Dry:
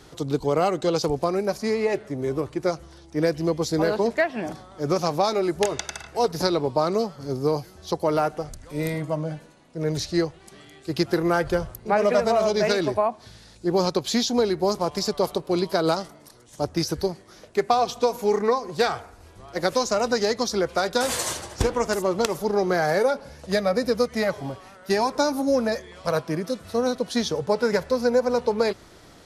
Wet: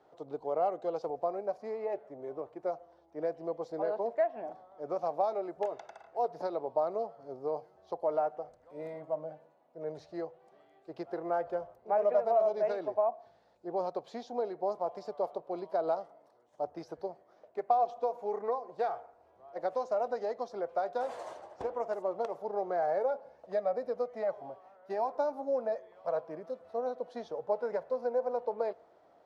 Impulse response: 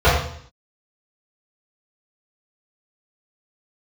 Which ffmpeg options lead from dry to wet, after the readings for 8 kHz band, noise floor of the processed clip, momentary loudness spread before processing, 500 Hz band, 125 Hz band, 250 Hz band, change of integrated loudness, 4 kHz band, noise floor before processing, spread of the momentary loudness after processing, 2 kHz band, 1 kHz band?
below −30 dB, −65 dBFS, 8 LU, −9.0 dB, −25.0 dB, −19.0 dB, −10.0 dB, below −25 dB, −50 dBFS, 12 LU, −20.0 dB, −7.5 dB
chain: -filter_complex "[0:a]bandpass=frequency=680:width_type=q:width=2.6:csg=0,asplit=2[link_01][link_02];[1:a]atrim=start_sample=2205[link_03];[link_02][link_03]afir=irnorm=-1:irlink=0,volume=-48.5dB[link_04];[link_01][link_04]amix=inputs=2:normalize=0,volume=-5dB"

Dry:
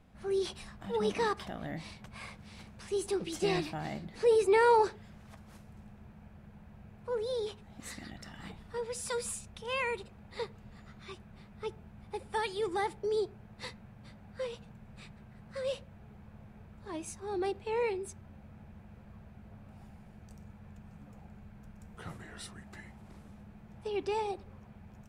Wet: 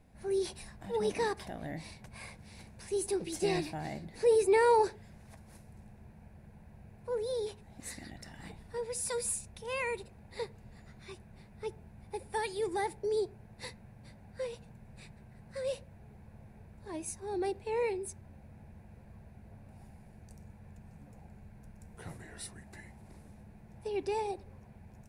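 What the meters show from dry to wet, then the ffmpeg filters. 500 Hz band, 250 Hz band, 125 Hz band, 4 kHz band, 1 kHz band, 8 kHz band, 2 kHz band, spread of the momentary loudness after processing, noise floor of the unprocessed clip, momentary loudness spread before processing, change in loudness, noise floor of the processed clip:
0.0 dB, −1.0 dB, −0.5 dB, −3.0 dB, −1.5 dB, +4.0 dB, −2.0 dB, 22 LU, −55 dBFS, 22 LU, −0.5 dB, −56 dBFS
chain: -af "equalizer=frequency=200:width_type=o:width=0.33:gain=-4,equalizer=frequency=1250:width_type=o:width=0.33:gain=-11,equalizer=frequency=3150:width_type=o:width=0.33:gain=-8,equalizer=frequency=10000:width_type=o:width=0.33:gain=8"

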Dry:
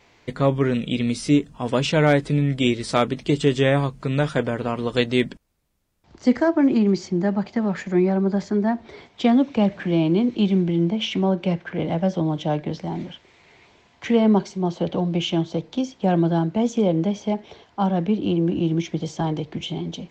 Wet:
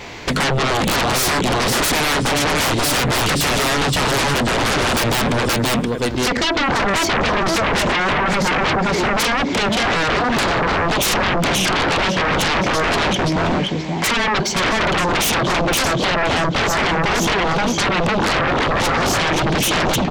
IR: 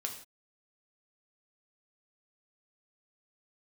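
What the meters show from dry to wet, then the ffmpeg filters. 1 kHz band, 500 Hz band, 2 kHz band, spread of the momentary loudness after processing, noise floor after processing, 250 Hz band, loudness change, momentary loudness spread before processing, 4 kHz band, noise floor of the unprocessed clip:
+11.5 dB, +3.0 dB, +15.0 dB, 1 LU, −21 dBFS, −1.5 dB, +5.0 dB, 9 LU, +13.0 dB, −57 dBFS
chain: -af "aecho=1:1:525|1050|1575:0.562|0.135|0.0324,acompressor=threshold=-22dB:ratio=12,aeval=exprs='0.188*sin(PI/2*8.91*val(0)/0.188)':channel_layout=same"

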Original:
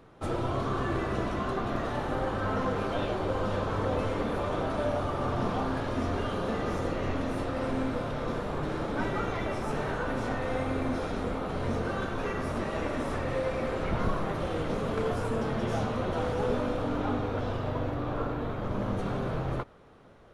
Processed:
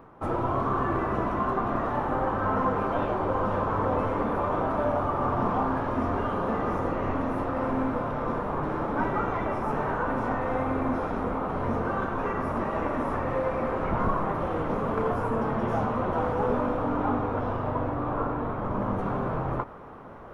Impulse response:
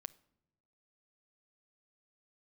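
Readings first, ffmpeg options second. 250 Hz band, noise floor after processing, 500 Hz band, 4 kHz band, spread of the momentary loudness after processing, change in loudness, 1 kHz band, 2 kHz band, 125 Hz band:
+3.0 dB, −32 dBFS, +2.5 dB, −8.5 dB, 3 LU, +3.5 dB, +6.5 dB, +1.5 dB, +0.5 dB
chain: -af "areverse,acompressor=mode=upward:threshold=-38dB:ratio=2.5,areverse,equalizer=frequency=250:width_type=o:width=1:gain=3,equalizer=frequency=1000:width_type=o:width=1:gain=9,equalizer=frequency=4000:width_type=o:width=1:gain=-10,equalizer=frequency=8000:width_type=o:width=1:gain=-10"

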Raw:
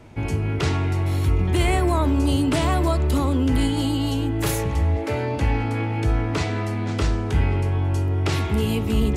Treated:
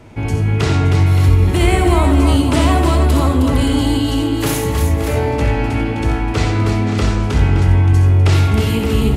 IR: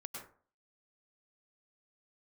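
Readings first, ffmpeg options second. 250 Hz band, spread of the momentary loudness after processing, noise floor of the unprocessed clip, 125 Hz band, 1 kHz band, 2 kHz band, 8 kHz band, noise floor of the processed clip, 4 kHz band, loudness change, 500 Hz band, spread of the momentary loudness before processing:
+6.5 dB, 5 LU, −26 dBFS, +8.5 dB, +6.5 dB, +7.0 dB, +7.0 dB, −19 dBFS, +7.0 dB, +7.5 dB, +6.5 dB, 4 LU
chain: -filter_complex "[0:a]aecho=1:1:66|86|313|571:0.355|0.398|0.501|0.316,asplit=2[link_01][link_02];[1:a]atrim=start_sample=2205,adelay=58[link_03];[link_02][link_03]afir=irnorm=-1:irlink=0,volume=-9dB[link_04];[link_01][link_04]amix=inputs=2:normalize=0,volume=4.5dB"

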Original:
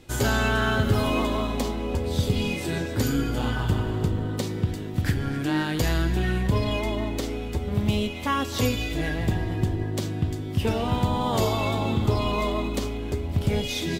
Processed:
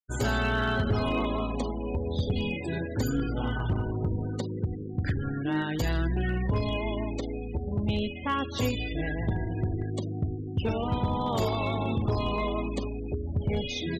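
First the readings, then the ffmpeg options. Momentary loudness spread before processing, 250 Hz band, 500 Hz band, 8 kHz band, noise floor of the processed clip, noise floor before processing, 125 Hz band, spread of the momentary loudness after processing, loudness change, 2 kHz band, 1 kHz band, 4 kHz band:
5 LU, −4.0 dB, −3.5 dB, −10.0 dB, −36 dBFS, −32 dBFS, −4.0 dB, 5 LU, −4.0 dB, −4.5 dB, −4.0 dB, −6.0 dB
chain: -af "afftfilt=real='re*gte(hypot(re,im),0.0316)':imag='im*gte(hypot(re,im),0.0316)':win_size=1024:overlap=0.75,volume=16.5dB,asoftclip=hard,volume=-16.5dB,volume=-3.5dB"

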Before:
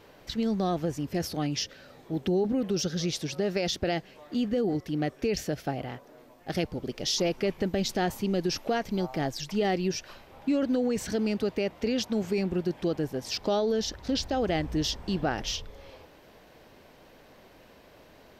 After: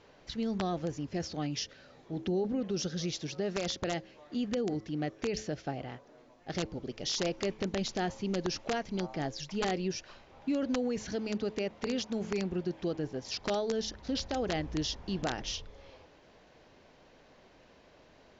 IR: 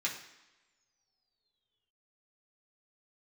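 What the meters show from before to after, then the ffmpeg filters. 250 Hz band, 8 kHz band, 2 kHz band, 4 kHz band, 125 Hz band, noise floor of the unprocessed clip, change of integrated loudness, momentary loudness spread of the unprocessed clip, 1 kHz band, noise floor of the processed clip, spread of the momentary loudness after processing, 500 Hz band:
−5.5 dB, −4.5 dB, −4.0 dB, −4.5 dB, −5.0 dB, −55 dBFS, −5.0 dB, 7 LU, −4.5 dB, −60 dBFS, 7 LU, −5.5 dB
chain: -af "bandreject=frequency=108:width_type=h:width=4,bandreject=frequency=216:width_type=h:width=4,bandreject=frequency=324:width_type=h:width=4,bandreject=frequency=432:width_type=h:width=4,bandreject=frequency=540:width_type=h:width=4,aeval=exprs='(mod(8.41*val(0)+1,2)-1)/8.41':channel_layout=same,volume=-5dB" -ar 16000 -c:a mp2 -b:a 128k

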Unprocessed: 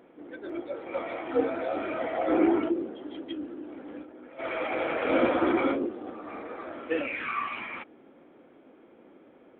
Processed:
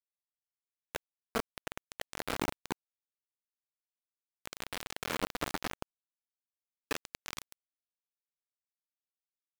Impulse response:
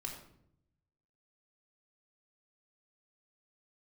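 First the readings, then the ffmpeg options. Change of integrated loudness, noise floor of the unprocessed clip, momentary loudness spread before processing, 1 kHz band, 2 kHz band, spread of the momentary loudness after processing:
−10.0 dB, −56 dBFS, 17 LU, −10.0 dB, −8.0 dB, 10 LU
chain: -filter_complex "[0:a]afreqshift=-39,acrossover=split=120[link_01][link_02];[link_02]acompressor=threshold=-31dB:ratio=6[link_03];[link_01][link_03]amix=inputs=2:normalize=0,aeval=exprs='val(0)*gte(abs(val(0)),0.0501)':channel_layout=same,volume=3.5dB"

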